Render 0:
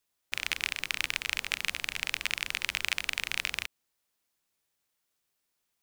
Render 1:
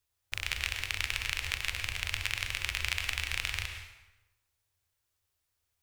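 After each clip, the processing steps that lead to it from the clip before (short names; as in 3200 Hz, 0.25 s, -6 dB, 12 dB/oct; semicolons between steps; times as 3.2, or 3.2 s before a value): resonant low shelf 130 Hz +11.5 dB, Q 3; plate-style reverb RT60 1 s, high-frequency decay 0.8×, pre-delay 90 ms, DRR 5 dB; gain -2.5 dB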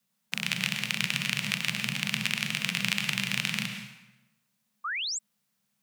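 painted sound rise, 4.84–5.19, 1000–8000 Hz -36 dBFS; frequency shift +120 Hz; gain +4 dB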